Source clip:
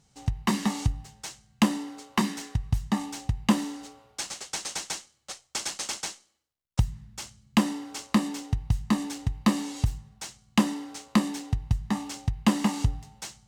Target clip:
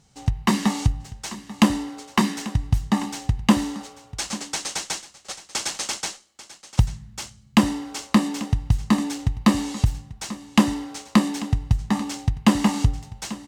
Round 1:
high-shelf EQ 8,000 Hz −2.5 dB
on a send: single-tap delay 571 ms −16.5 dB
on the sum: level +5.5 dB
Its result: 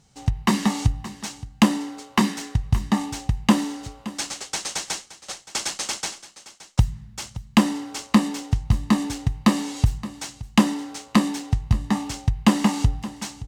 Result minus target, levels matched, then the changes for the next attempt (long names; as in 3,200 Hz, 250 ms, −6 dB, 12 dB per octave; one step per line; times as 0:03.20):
echo 269 ms early
change: single-tap delay 840 ms −16.5 dB